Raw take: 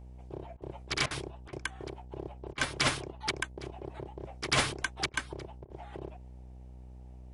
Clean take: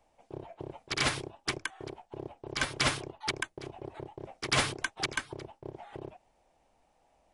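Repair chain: de-hum 62.6 Hz, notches 15; interpolate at 0.57/1.06/1.48/2.53/5.09/5.65, 47 ms

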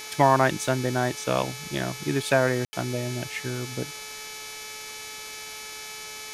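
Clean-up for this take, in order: de-hum 431.6 Hz, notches 16; notch 2300 Hz, Q 30; room tone fill 2.65–2.73; denoiser 30 dB, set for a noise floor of -39 dBFS

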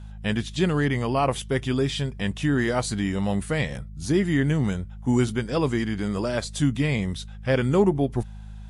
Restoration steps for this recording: de-hum 52.1 Hz, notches 4

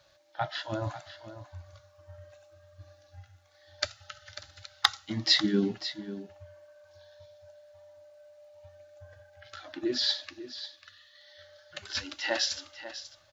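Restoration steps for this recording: clip repair -5.5 dBFS; de-click; inverse comb 0.544 s -13 dB

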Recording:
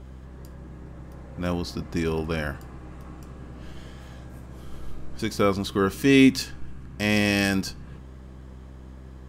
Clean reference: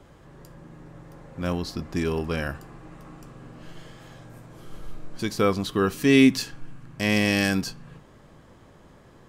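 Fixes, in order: de-hum 64.5 Hz, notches 6

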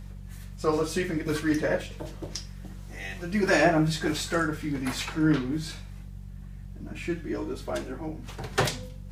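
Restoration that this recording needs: de-hum 47.3 Hz, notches 4

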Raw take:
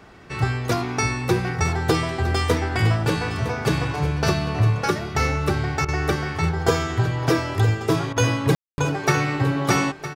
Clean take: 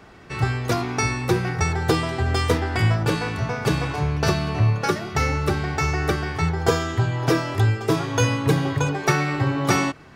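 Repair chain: room tone fill 8.55–8.78; interpolate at 5.85/8.13, 33 ms; inverse comb 0.96 s -12.5 dB

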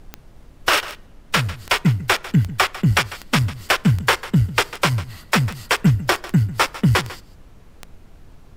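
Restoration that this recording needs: de-click; noise print and reduce 19 dB; inverse comb 0.148 s -16.5 dB

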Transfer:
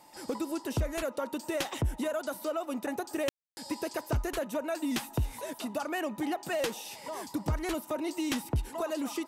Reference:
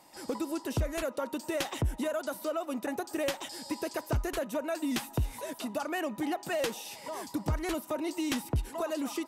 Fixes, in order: notch 880 Hz, Q 30; room tone fill 3.29–3.57

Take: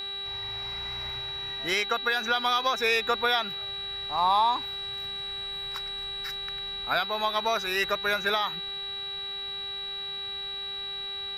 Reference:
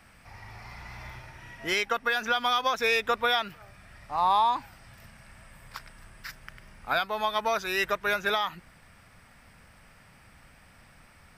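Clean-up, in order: de-hum 396.8 Hz, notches 11; notch 3900 Hz, Q 30

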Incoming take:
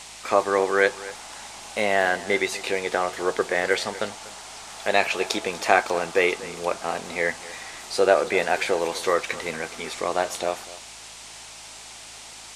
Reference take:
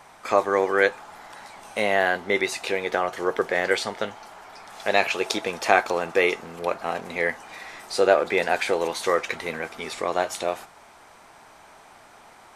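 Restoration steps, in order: de-hum 53.7 Hz, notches 10; noise print and reduce 8 dB; inverse comb 0.243 s -17.5 dB

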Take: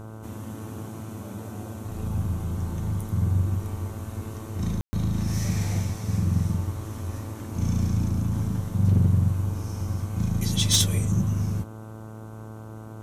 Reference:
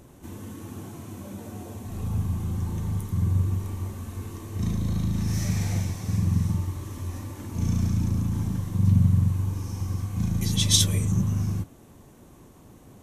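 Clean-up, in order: clip repair -13 dBFS; de-hum 109.6 Hz, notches 14; room tone fill 4.81–4.93

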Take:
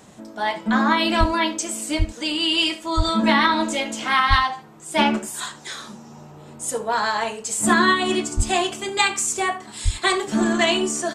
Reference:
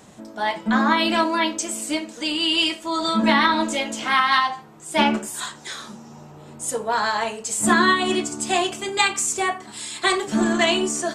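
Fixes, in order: de-plosive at 1.19/1.98/2.96/4.29/8.36/9.84; inverse comb 73 ms -19.5 dB

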